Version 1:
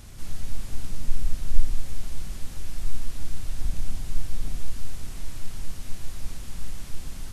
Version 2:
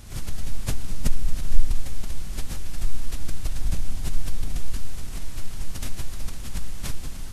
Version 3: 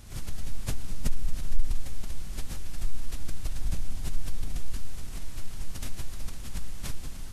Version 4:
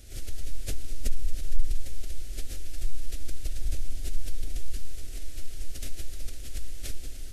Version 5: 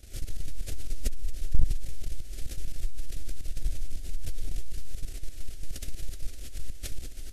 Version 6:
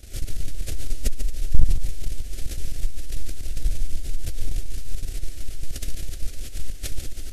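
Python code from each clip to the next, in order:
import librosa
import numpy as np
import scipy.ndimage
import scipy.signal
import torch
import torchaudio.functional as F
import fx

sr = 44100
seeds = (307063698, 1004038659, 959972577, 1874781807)

y1 = fx.pre_swell(x, sr, db_per_s=140.0)
y1 = y1 * 10.0 ** (1.0 / 20.0)
y2 = 10.0 ** (-3.5 / 20.0) * np.tanh(y1 / 10.0 ** (-3.5 / 20.0))
y2 = y2 * 10.0 ** (-4.5 / 20.0)
y3 = fx.fixed_phaser(y2, sr, hz=410.0, stages=4)
y3 = y3 * 10.0 ** (1.0 / 20.0)
y4 = fx.level_steps(y3, sr, step_db=12)
y4 = y4 * 10.0 ** (3.0 / 20.0)
y5 = y4 + 10.0 ** (-8.5 / 20.0) * np.pad(y4, (int(142 * sr / 1000.0), 0))[:len(y4)]
y5 = y5 * 10.0 ** (6.0 / 20.0)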